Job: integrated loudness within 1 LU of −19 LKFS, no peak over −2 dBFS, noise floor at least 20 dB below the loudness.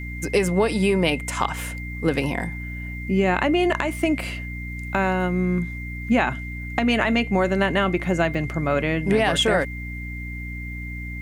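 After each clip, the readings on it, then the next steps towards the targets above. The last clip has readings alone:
mains hum 60 Hz; hum harmonics up to 300 Hz; level of the hum −30 dBFS; interfering tone 2,100 Hz; level of the tone −35 dBFS; integrated loudness −23.0 LKFS; sample peak −6.5 dBFS; target loudness −19.0 LKFS
→ mains-hum notches 60/120/180/240/300 Hz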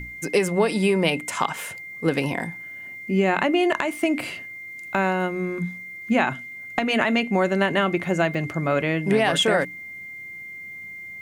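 mains hum none found; interfering tone 2,100 Hz; level of the tone −35 dBFS
→ notch filter 2,100 Hz, Q 30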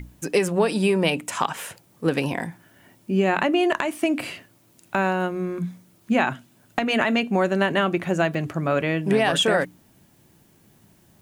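interfering tone none found; integrated loudness −23.0 LKFS; sample peak −6.5 dBFS; target loudness −19.0 LKFS
→ level +4 dB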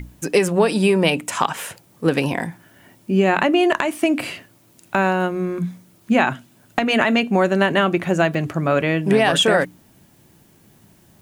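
integrated loudness −19.0 LKFS; sample peak −2.5 dBFS; background noise floor −54 dBFS

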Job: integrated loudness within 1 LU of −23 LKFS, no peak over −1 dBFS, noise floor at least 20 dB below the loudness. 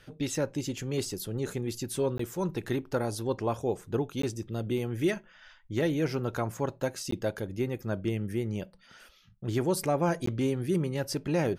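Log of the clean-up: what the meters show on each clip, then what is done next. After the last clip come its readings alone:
number of dropouts 4; longest dropout 14 ms; integrated loudness −31.5 LKFS; sample peak −17.0 dBFS; target loudness −23.0 LKFS
→ repair the gap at 0:02.18/0:04.22/0:07.11/0:10.26, 14 ms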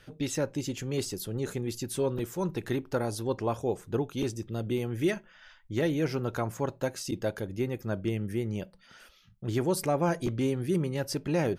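number of dropouts 0; integrated loudness −31.5 LKFS; sample peak −17.0 dBFS; target loudness −23.0 LKFS
→ level +8.5 dB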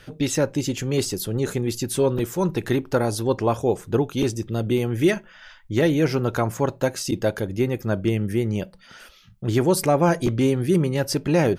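integrated loudness −23.0 LKFS; sample peak −8.5 dBFS; background noise floor −50 dBFS

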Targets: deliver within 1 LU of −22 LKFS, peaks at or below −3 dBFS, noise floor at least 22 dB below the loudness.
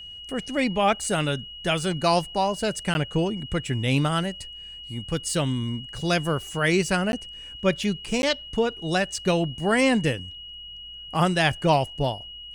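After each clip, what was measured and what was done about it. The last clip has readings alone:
number of dropouts 3; longest dropout 11 ms; interfering tone 2,900 Hz; level of the tone −38 dBFS; integrated loudness −25.0 LKFS; sample peak −7.0 dBFS; target loudness −22.0 LKFS
→ repair the gap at 0:02.94/0:07.12/0:08.22, 11 ms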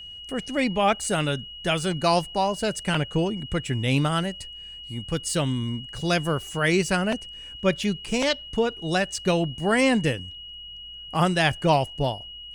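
number of dropouts 0; interfering tone 2,900 Hz; level of the tone −38 dBFS
→ notch filter 2,900 Hz, Q 30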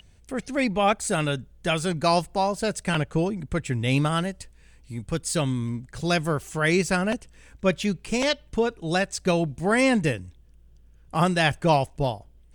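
interfering tone none found; integrated loudness −25.0 LKFS; sample peak −7.0 dBFS; target loudness −22.0 LKFS
→ level +3 dB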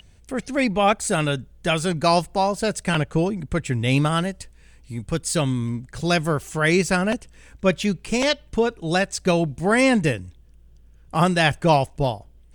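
integrated loudness −22.0 LKFS; sample peak −4.0 dBFS; background noise floor −51 dBFS

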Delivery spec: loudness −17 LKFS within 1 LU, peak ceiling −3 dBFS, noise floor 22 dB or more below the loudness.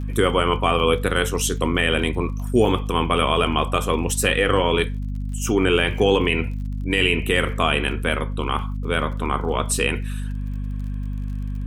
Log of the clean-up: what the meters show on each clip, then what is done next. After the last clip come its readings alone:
crackle rate 37 per second; mains hum 50 Hz; hum harmonics up to 250 Hz; level of the hum −24 dBFS; integrated loudness −21.5 LKFS; sample peak −3.5 dBFS; target loudness −17.0 LKFS
→ click removal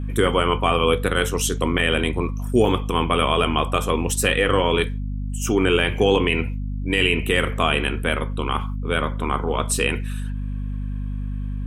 crackle rate 0.43 per second; mains hum 50 Hz; hum harmonics up to 250 Hz; level of the hum −24 dBFS
→ mains-hum notches 50/100/150/200/250 Hz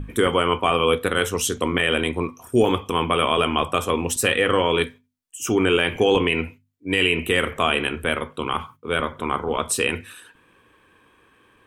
mains hum none found; integrated loudness −21.5 LKFS; sample peak −4.5 dBFS; target loudness −17.0 LKFS
→ level +4.5 dB
brickwall limiter −3 dBFS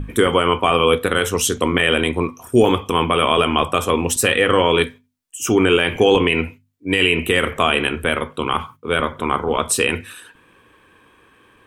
integrated loudness −17.5 LKFS; sample peak −3.0 dBFS; background noise floor −55 dBFS

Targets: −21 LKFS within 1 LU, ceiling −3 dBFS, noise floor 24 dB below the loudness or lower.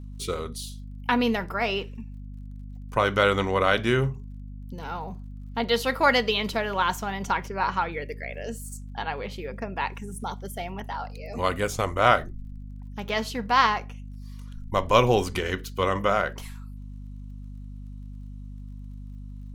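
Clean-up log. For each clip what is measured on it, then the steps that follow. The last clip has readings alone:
crackle rate 32 per second; mains hum 50 Hz; hum harmonics up to 250 Hz; level of the hum −36 dBFS; integrated loudness −26.0 LKFS; sample peak −3.0 dBFS; target loudness −21.0 LKFS
→ click removal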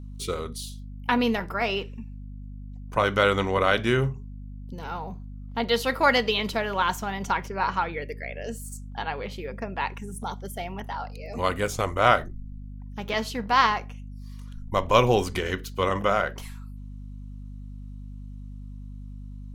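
crackle rate 0.10 per second; mains hum 50 Hz; hum harmonics up to 250 Hz; level of the hum −36 dBFS
→ hum removal 50 Hz, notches 5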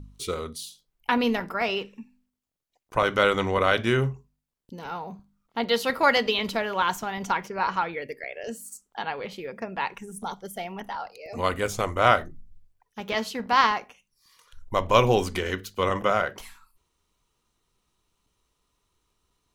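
mains hum none found; integrated loudness −26.0 LKFS; sample peak −3.0 dBFS; target loudness −21.0 LKFS
→ level +5 dB
brickwall limiter −3 dBFS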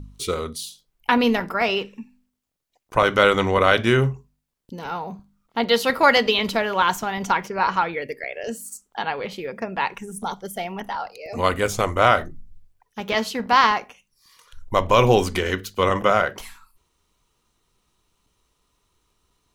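integrated loudness −21.5 LKFS; sample peak −3.0 dBFS; background noise floor −74 dBFS

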